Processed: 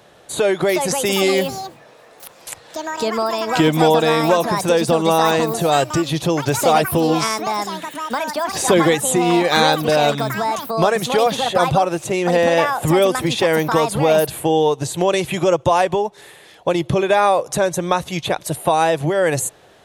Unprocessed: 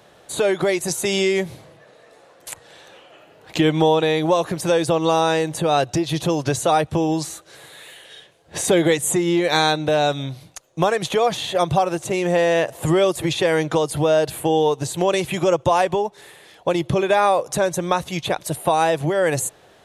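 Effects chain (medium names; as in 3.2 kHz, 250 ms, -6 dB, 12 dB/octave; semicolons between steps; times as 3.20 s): ever faster or slower copies 482 ms, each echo +6 st, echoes 2, each echo -6 dB; trim +2 dB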